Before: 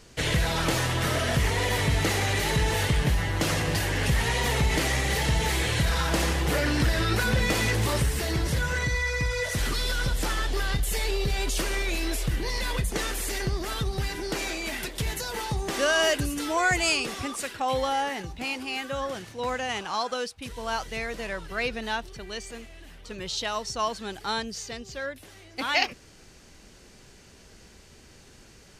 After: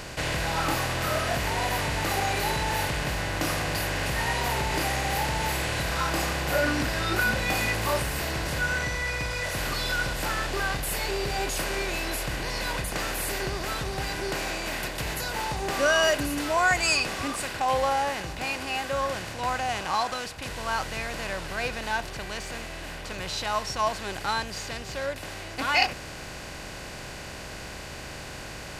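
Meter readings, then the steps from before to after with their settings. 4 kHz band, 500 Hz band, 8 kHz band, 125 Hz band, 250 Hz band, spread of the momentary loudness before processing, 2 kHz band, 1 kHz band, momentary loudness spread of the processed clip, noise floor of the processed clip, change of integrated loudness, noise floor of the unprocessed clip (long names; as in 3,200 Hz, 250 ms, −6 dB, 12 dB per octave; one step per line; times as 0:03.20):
−0.5 dB, 0.0 dB, −0.5 dB, −5.0 dB, −2.5 dB, 9 LU, +1.0 dB, +3.0 dB, 12 LU, −39 dBFS, −0.5 dB, −52 dBFS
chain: compressor on every frequency bin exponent 0.4
noise reduction from a noise print of the clip's start 11 dB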